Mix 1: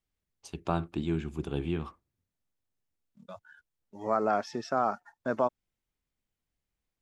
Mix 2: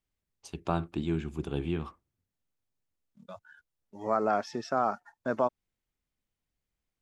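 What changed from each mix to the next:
nothing changed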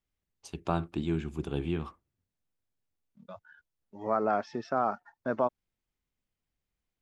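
second voice: add high-frequency loss of the air 150 metres

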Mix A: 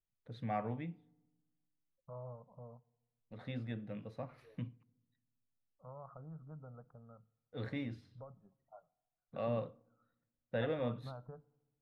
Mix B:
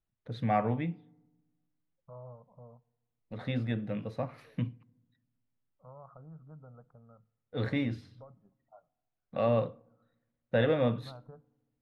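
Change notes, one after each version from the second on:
first voice +9.5 dB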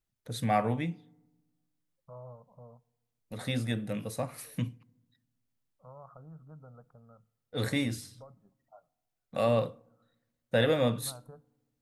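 master: remove high-frequency loss of the air 310 metres

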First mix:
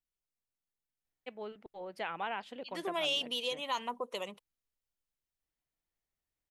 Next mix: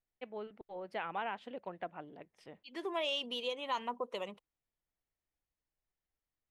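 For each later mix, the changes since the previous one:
first voice: entry −1.05 s
master: add low-pass filter 2,400 Hz 6 dB per octave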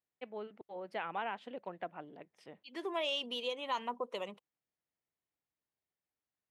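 master: add high-pass filter 120 Hz 12 dB per octave

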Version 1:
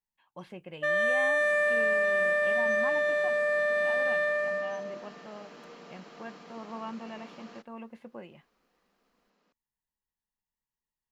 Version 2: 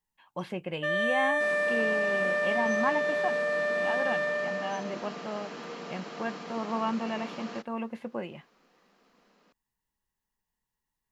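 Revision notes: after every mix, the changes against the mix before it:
speech +9.0 dB
first sound: send −9.5 dB
second sound +8.5 dB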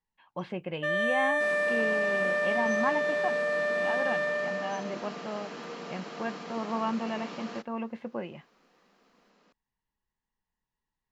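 speech: add high-frequency loss of the air 120 metres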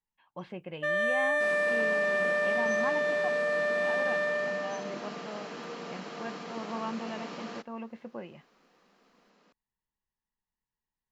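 speech −5.5 dB

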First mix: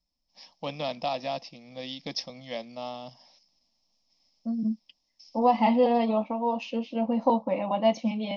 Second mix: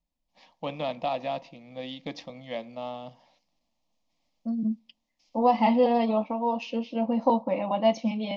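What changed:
first voice: remove low-pass with resonance 5,300 Hz, resonance Q 13
reverb: on, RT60 0.60 s

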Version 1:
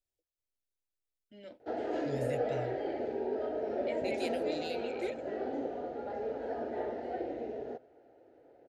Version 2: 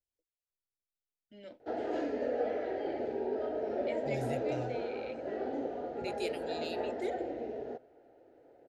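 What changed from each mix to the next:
second voice: entry +2.00 s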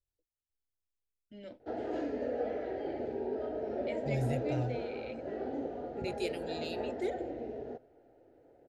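background −3.5 dB
master: add low-shelf EQ 200 Hz +10.5 dB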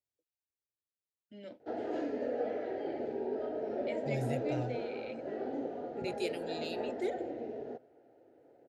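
master: add high-pass filter 140 Hz 12 dB per octave

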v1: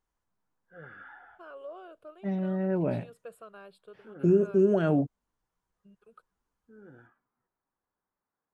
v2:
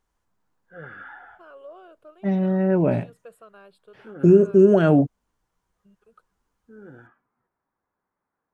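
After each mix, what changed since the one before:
second voice +8.5 dB
background +7.5 dB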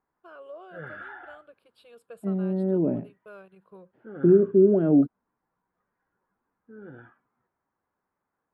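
first voice: entry −1.15 s
second voice: add resonant band-pass 290 Hz, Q 1.8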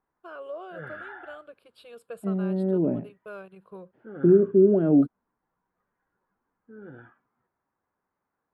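first voice +5.5 dB

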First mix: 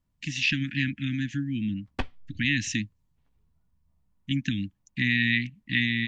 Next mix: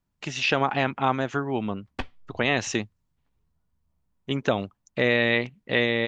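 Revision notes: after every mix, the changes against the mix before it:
speech: remove Chebyshev band-stop filter 300–1,700 Hz, order 5
master: add low-shelf EQ 230 Hz −4 dB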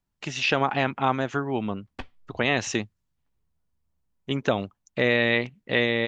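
background −5.5 dB

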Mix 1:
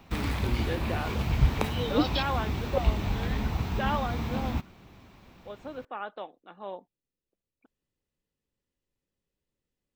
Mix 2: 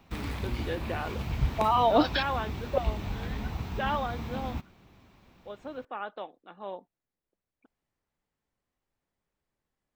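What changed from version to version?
second voice: remove linear-phase brick-wall band-stop 590–2,400 Hz
background −5.0 dB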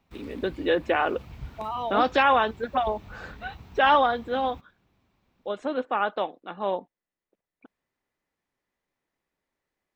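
first voice +11.5 dB
second voice −7.5 dB
background −11.5 dB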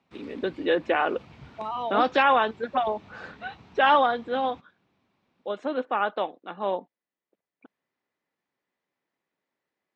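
master: add band-pass filter 150–5,500 Hz

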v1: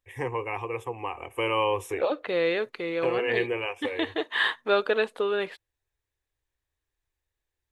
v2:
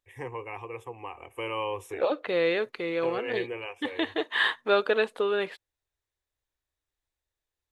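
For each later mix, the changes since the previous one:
first voice −6.5 dB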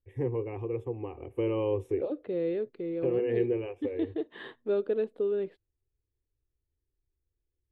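first voice +10.5 dB
master: add drawn EQ curve 380 Hz 0 dB, 980 Hz −21 dB, 3,800 Hz −22 dB, 6,200 Hz −27 dB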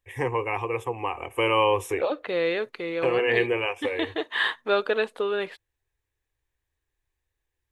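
master: remove drawn EQ curve 380 Hz 0 dB, 980 Hz −21 dB, 3,800 Hz −22 dB, 6,200 Hz −27 dB

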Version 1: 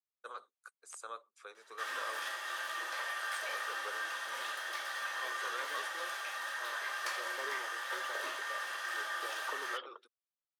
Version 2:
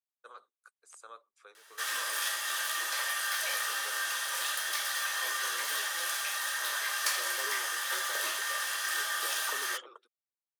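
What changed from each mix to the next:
first voice −4.5 dB
second voice: remove linear-phase brick-wall low-pass 5,200 Hz
background: remove low-pass filter 1,300 Hz 6 dB per octave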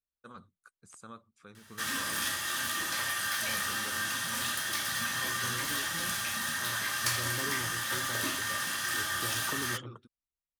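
master: remove Butterworth high-pass 430 Hz 36 dB per octave

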